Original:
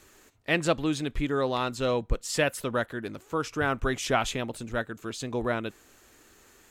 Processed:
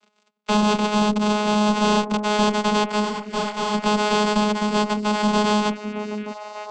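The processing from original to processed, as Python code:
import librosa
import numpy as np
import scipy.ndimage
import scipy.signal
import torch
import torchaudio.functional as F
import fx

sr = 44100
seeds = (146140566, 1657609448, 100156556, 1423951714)

y = np.r_[np.sort(x[:len(x) // 128 * 128].reshape(-1, 128), axis=1).ravel(), x[len(x) // 128 * 128:]]
y = fx.over_compress(y, sr, threshold_db=-31.0, ratio=-0.5, at=(0.84, 1.68), fade=0.02)
y = fx.leveller(y, sr, passes=5)
y = fx.tilt_shelf(y, sr, db=-7.0, hz=1100.0)
y = fx.vocoder(y, sr, bands=16, carrier='saw', carrier_hz=210.0)
y = fx.echo_stepped(y, sr, ms=606, hz=290.0, octaves=1.4, feedback_pct=70, wet_db=-6)
y = fx.cheby_harmonics(y, sr, harmonics=(2, 5), levels_db=(-7, -29), full_scale_db=-6.5)
y = fx.peak_eq(y, sr, hz=1800.0, db=-9.0, octaves=0.31)
y = fx.detune_double(y, sr, cents=32, at=(3.04, 3.73), fade=0.02)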